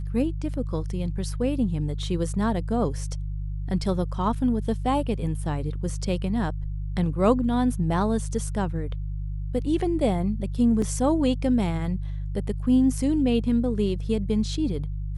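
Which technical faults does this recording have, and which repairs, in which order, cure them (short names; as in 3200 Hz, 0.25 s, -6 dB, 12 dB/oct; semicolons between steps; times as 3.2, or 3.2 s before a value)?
hum 50 Hz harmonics 3 -30 dBFS
10.82 gap 3.2 ms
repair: de-hum 50 Hz, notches 3; interpolate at 10.82, 3.2 ms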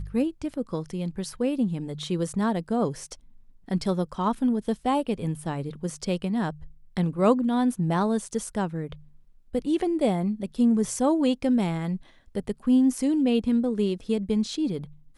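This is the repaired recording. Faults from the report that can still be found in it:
none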